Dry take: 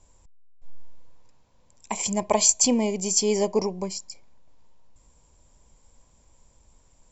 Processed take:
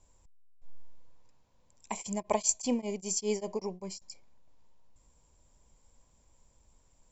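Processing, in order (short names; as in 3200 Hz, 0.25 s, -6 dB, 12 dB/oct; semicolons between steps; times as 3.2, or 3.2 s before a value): 1.94–4.02 beating tremolo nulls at 5.1 Hz; gain -6.5 dB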